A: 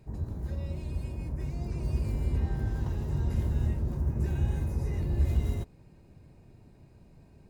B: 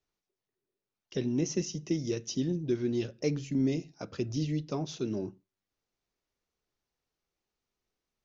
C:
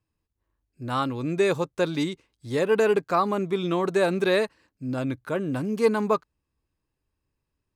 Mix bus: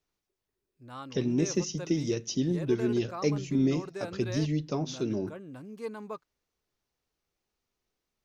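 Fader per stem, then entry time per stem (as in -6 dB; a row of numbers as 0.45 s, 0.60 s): mute, +2.5 dB, -16.5 dB; mute, 0.00 s, 0.00 s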